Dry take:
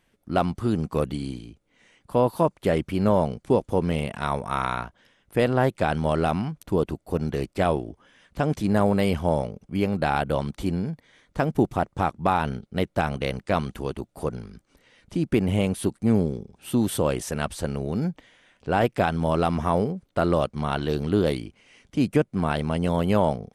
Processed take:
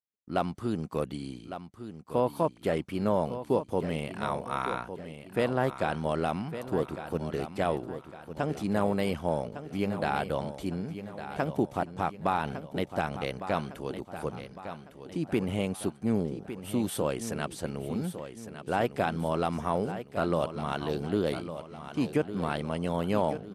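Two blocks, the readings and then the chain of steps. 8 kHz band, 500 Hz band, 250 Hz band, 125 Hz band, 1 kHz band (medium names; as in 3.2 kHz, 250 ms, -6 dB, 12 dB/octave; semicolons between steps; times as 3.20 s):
-5.0 dB, -5.5 dB, -6.5 dB, -8.5 dB, -5.0 dB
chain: high-pass 140 Hz 6 dB/octave; expander -48 dBFS; feedback delay 1156 ms, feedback 45%, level -11 dB; trim -5.5 dB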